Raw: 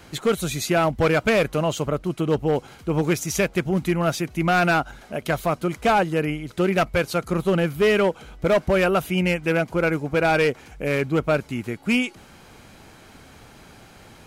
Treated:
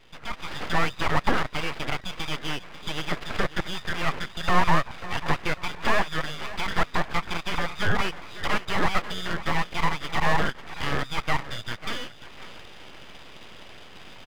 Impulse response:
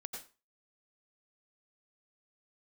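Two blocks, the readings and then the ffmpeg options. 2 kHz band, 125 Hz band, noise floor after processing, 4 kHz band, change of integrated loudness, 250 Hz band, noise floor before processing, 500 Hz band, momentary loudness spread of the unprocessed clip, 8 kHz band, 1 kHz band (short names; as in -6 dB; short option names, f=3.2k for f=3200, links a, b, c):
-2.5 dB, -7.0 dB, -45 dBFS, +1.0 dB, -6.0 dB, -10.0 dB, -48 dBFS, -12.5 dB, 7 LU, -8.0 dB, -1.5 dB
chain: -filter_complex "[0:a]afftfilt=real='real(if(between(b,1,1012),(2*floor((b-1)/92)+1)*92-b,b),0)':imag='imag(if(between(b,1,1012),(2*floor((b-1)/92)+1)*92-b,b),0)*if(between(b,1,1012),-1,1)':win_size=2048:overlap=0.75,acrossover=split=730[a][b];[a]agate=range=-30dB:threshold=-52dB:ratio=16:detection=peak[c];[b]acompressor=threshold=-32dB:ratio=12[d];[c][d]amix=inputs=2:normalize=0,aecho=1:1:543|1086|1629|2172:0.178|0.0694|0.027|0.0105,acrusher=samples=9:mix=1:aa=0.000001,lowpass=1.5k,aeval=exprs='abs(val(0))':c=same,dynaudnorm=f=120:g=7:m=11dB,volume=-1.5dB"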